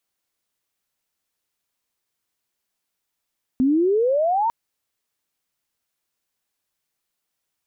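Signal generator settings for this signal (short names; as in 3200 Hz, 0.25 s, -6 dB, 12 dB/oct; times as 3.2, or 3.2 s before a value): chirp logarithmic 250 Hz -> 950 Hz -14.5 dBFS -> -17.5 dBFS 0.90 s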